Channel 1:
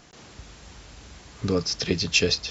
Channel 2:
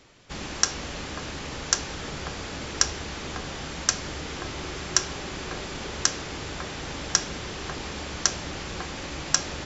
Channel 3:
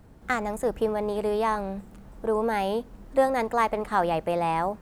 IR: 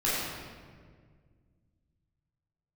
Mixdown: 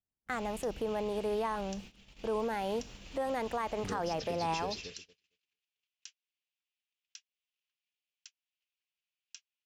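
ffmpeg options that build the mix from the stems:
-filter_complex "[0:a]equalizer=frequency=460:width_type=o:width=1.1:gain=2.5,acompressor=mode=upward:threshold=-30dB:ratio=2.5,adelay=2400,volume=-15.5dB,asplit=2[link_01][link_02];[link_02]volume=-12.5dB[link_03];[1:a]alimiter=limit=-12.5dB:level=0:latency=1:release=238,highpass=frequency=2700:width_type=q:width=3.4,volume=-19dB[link_04];[2:a]volume=-5.5dB[link_05];[link_03]aecho=0:1:227|454|681|908|1135|1362|1589|1816:1|0.52|0.27|0.141|0.0731|0.038|0.0198|0.0103[link_06];[link_01][link_04][link_05][link_06]amix=inputs=4:normalize=0,agate=range=-42dB:threshold=-47dB:ratio=16:detection=peak,alimiter=level_in=1dB:limit=-24dB:level=0:latency=1:release=64,volume=-1dB"

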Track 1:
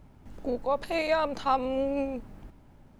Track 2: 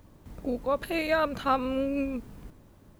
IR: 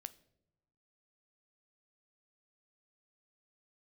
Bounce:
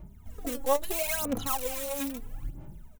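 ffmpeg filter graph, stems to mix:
-filter_complex "[0:a]acompressor=threshold=-33dB:ratio=3,bass=frequency=250:gain=4,treble=frequency=4000:gain=7,asplit=2[link_01][link_02];[link_02]adelay=2.9,afreqshift=1.1[link_03];[link_01][link_03]amix=inputs=2:normalize=1,volume=-5dB[link_04];[1:a]aeval=exprs='(mod(20*val(0)+1,2)-1)/20':channel_layout=same,aderivative,volume=-8dB[link_05];[link_04][link_05]amix=inputs=2:normalize=0,equalizer=frequency=4700:width=3.2:gain=-8,dynaudnorm=framelen=200:gausssize=3:maxgain=5dB,aphaser=in_gain=1:out_gain=1:delay=3.7:decay=0.74:speed=0.76:type=sinusoidal"

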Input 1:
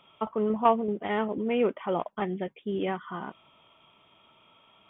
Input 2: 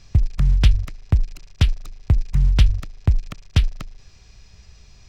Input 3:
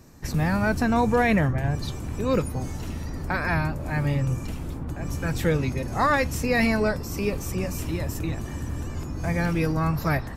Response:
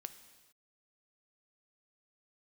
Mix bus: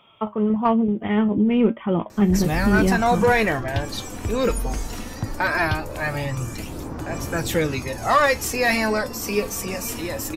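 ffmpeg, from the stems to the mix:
-filter_complex "[0:a]asubboost=boost=11.5:cutoff=240,volume=2dB[link_01];[1:a]acompressor=threshold=-20dB:ratio=6,asplit=2[link_02][link_03];[link_03]afreqshift=-0.49[link_04];[link_02][link_04]amix=inputs=2:normalize=1,adelay=2150,volume=-3dB[link_05];[2:a]bass=frequency=250:gain=-11,treble=frequency=4000:gain=3,aphaser=in_gain=1:out_gain=1:delay=4.4:decay=0.39:speed=0.2:type=sinusoidal,acontrast=87,adelay=2100,volume=-4.5dB[link_06];[link_01][link_05][link_06]amix=inputs=3:normalize=0,acontrast=65,flanger=delay=8.7:depth=1.1:regen=68:speed=1.1:shape=sinusoidal"

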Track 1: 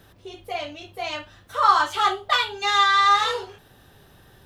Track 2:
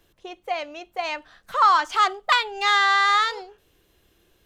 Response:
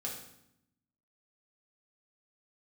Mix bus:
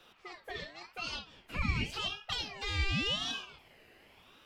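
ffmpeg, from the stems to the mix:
-filter_complex "[0:a]acrossover=split=510 2200:gain=0.0891 1 0.2[link_01][link_02][link_03];[link_01][link_02][link_03]amix=inputs=3:normalize=0,aeval=exprs='val(0)*sin(2*PI*1600*n/s+1600*0.3/0.9*sin(2*PI*0.9*n/s))':channel_layout=same,volume=2.5dB[link_04];[1:a]volume=-13.5dB,asplit=2[link_05][link_06];[link_06]apad=whole_len=196313[link_07];[link_04][link_07]sidechaincompress=threshold=-37dB:ratio=8:attack=16:release=138[link_08];[link_08][link_05]amix=inputs=2:normalize=0,acrossover=split=220|3000[link_09][link_10][link_11];[link_10]acompressor=threshold=-43dB:ratio=6[link_12];[link_09][link_12][link_11]amix=inputs=3:normalize=0"

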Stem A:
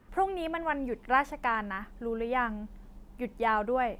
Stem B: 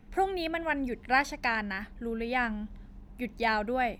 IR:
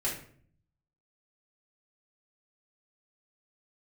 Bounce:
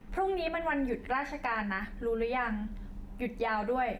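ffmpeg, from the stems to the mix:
-filter_complex "[0:a]volume=-2dB,asplit=2[link_01][link_02];[1:a]adelay=10,volume=3dB,asplit=2[link_03][link_04];[link_04]volume=-20dB[link_05];[link_02]apad=whole_len=176766[link_06];[link_03][link_06]sidechaincompress=threshold=-35dB:ratio=8:attack=16:release=482[link_07];[2:a]atrim=start_sample=2205[link_08];[link_05][link_08]afir=irnorm=-1:irlink=0[link_09];[link_01][link_07][link_09]amix=inputs=3:normalize=0,acrossover=split=3800[link_10][link_11];[link_11]acompressor=threshold=-58dB:ratio=4:attack=1:release=60[link_12];[link_10][link_12]amix=inputs=2:normalize=0,alimiter=limit=-21.5dB:level=0:latency=1:release=68"

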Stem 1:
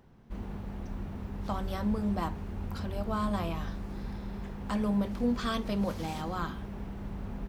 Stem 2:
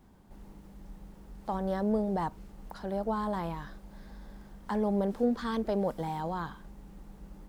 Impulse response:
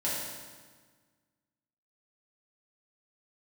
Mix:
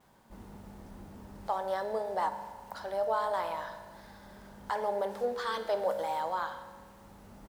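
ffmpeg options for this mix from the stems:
-filter_complex "[0:a]lowpass=1300,volume=-7dB,asplit=2[link_01][link_02];[link_02]volume=-18dB[link_03];[1:a]highpass=600,volume=-1,adelay=4.8,volume=2dB,asplit=3[link_04][link_05][link_06];[link_05]volume=-12.5dB[link_07];[link_06]apad=whole_len=329968[link_08];[link_01][link_08]sidechaincompress=threshold=-48dB:ratio=8:attack=16:release=1130[link_09];[2:a]atrim=start_sample=2205[link_10];[link_03][link_07]amix=inputs=2:normalize=0[link_11];[link_11][link_10]afir=irnorm=-1:irlink=0[link_12];[link_09][link_04][link_12]amix=inputs=3:normalize=0,lowshelf=frequency=120:gain=-8.5"

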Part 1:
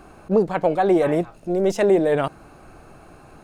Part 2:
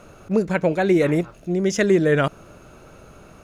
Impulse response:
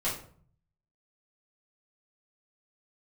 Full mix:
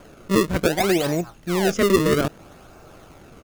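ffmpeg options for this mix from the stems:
-filter_complex "[0:a]bass=frequency=250:gain=-3,treble=frequency=4000:gain=-6,acrusher=samples=32:mix=1:aa=0.000001:lfo=1:lforange=51.2:lforate=0.63,volume=-1.5dB,asplit=2[link_01][link_02];[1:a]adelay=0.6,volume=-4dB[link_03];[link_02]apad=whole_len=151376[link_04];[link_03][link_04]sidechaincompress=threshold=-20dB:ratio=8:attack=16:release=439[link_05];[link_01][link_05]amix=inputs=2:normalize=0"

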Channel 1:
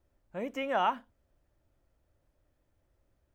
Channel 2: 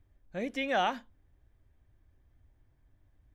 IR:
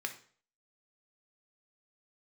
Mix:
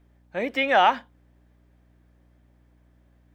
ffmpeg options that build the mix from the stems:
-filter_complex "[0:a]volume=-3dB[link_01];[1:a]lowpass=4400,volume=-1,volume=2dB[link_02];[link_01][link_02]amix=inputs=2:normalize=0,highpass=240,acontrast=80,aeval=exprs='val(0)+0.00126*(sin(2*PI*60*n/s)+sin(2*PI*2*60*n/s)/2+sin(2*PI*3*60*n/s)/3+sin(2*PI*4*60*n/s)/4+sin(2*PI*5*60*n/s)/5)':channel_layout=same"

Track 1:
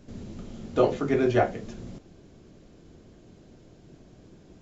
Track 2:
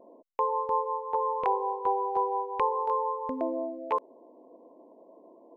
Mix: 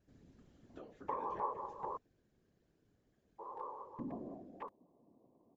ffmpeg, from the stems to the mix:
ffmpeg -i stem1.wav -i stem2.wav -filter_complex "[0:a]acompressor=threshold=-28dB:ratio=4,volume=-17.5dB,asplit=2[link_01][link_02];[1:a]lowshelf=frequency=290:width_type=q:width=1.5:gain=12,adelay=700,volume=-4.5dB,asplit=3[link_03][link_04][link_05];[link_03]atrim=end=1.97,asetpts=PTS-STARTPTS,afade=type=out:start_time=1.966:duration=0.004:curve=hsin[link_06];[link_04]atrim=start=1.97:end=3.39,asetpts=PTS-STARTPTS,volume=0[link_07];[link_05]atrim=start=3.39,asetpts=PTS-STARTPTS,afade=type=in:duration=0.004:curve=hsin[link_08];[link_06][link_07][link_08]concat=n=3:v=0:a=1[link_09];[link_02]apad=whole_len=276416[link_10];[link_09][link_10]sidechaingate=range=-7dB:threshold=-57dB:ratio=16:detection=peak[link_11];[link_01][link_11]amix=inputs=2:normalize=0,equalizer=frequency=1700:width_type=o:width=0.36:gain=8,afftfilt=real='hypot(re,im)*cos(2*PI*random(0))':imag='hypot(re,im)*sin(2*PI*random(1))':win_size=512:overlap=0.75" out.wav

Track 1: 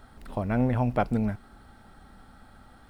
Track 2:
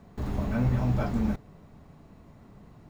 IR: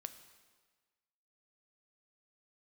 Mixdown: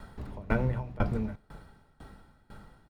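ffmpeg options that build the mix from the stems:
-filter_complex "[0:a]aecho=1:1:2.1:0.53,volume=0dB,asplit=2[link_01][link_02];[link_02]volume=-3.5dB[link_03];[1:a]lowpass=4800,volume=-1,volume=2dB[link_04];[2:a]atrim=start_sample=2205[link_05];[link_03][link_05]afir=irnorm=-1:irlink=0[link_06];[link_01][link_04][link_06]amix=inputs=3:normalize=0,acrossover=split=250[link_07][link_08];[link_08]acompressor=threshold=-25dB:ratio=10[link_09];[link_07][link_09]amix=inputs=2:normalize=0,aeval=exprs='val(0)*pow(10,-23*if(lt(mod(2*n/s,1),2*abs(2)/1000),1-mod(2*n/s,1)/(2*abs(2)/1000),(mod(2*n/s,1)-2*abs(2)/1000)/(1-2*abs(2)/1000))/20)':channel_layout=same"

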